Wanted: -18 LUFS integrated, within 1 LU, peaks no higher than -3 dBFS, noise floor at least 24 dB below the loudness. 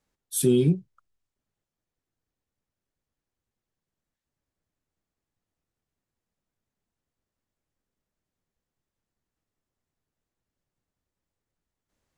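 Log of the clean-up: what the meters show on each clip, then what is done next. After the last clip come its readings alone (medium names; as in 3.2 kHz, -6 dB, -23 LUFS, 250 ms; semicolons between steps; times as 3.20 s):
loudness -24.0 LUFS; peak level -11.5 dBFS; loudness target -18.0 LUFS
-> trim +6 dB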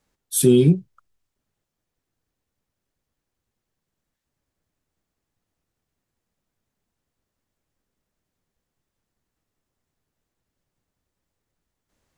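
loudness -18.0 LUFS; peak level -5.5 dBFS; noise floor -83 dBFS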